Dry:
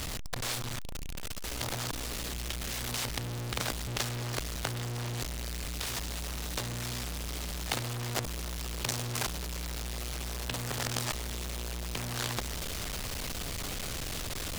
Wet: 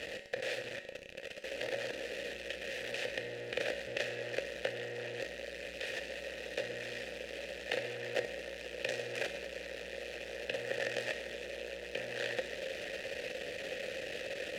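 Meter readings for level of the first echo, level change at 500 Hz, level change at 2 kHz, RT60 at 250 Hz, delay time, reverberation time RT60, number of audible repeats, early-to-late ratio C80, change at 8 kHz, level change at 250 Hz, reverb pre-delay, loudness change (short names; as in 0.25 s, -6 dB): none, +5.5 dB, +1.5 dB, 1.0 s, none, 1.0 s, none, 12.0 dB, -16.0 dB, -9.0 dB, 5 ms, -4.5 dB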